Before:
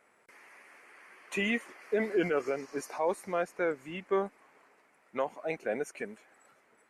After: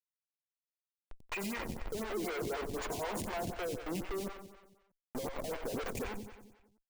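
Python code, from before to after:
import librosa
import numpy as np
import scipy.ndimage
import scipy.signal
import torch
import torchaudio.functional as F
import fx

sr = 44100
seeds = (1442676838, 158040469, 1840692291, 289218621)

y = fx.block_float(x, sr, bits=5)
y = scipy.signal.sosfilt(scipy.signal.butter(2, 49.0, 'highpass', fs=sr, output='sos'), y)
y = fx.spec_gate(y, sr, threshold_db=-20, keep='strong')
y = fx.ripple_eq(y, sr, per_octave=1.8, db=12, at=(1.93, 3.48))
y = fx.schmitt(y, sr, flips_db=-44.5)
y = fx.echo_feedback(y, sr, ms=91, feedback_pct=59, wet_db=-8.5)
y = fx.stagger_phaser(y, sr, hz=4.0)
y = y * librosa.db_to_amplitude(-1.0)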